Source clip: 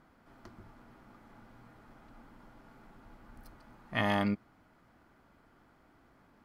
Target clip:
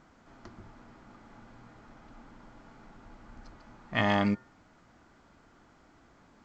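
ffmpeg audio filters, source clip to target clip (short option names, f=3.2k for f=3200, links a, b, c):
-af "bandreject=f=129:t=h:w=4,bandreject=f=258:t=h:w=4,bandreject=f=387:t=h:w=4,bandreject=f=516:t=h:w=4,bandreject=f=645:t=h:w=4,bandreject=f=774:t=h:w=4,bandreject=f=903:t=h:w=4,bandreject=f=1.032k:t=h:w=4,bandreject=f=1.161k:t=h:w=4,bandreject=f=1.29k:t=h:w=4,bandreject=f=1.419k:t=h:w=4,bandreject=f=1.548k:t=h:w=4,bandreject=f=1.677k:t=h:w=4,bandreject=f=1.806k:t=h:w=4,volume=3.5dB" -ar 16000 -c:a pcm_alaw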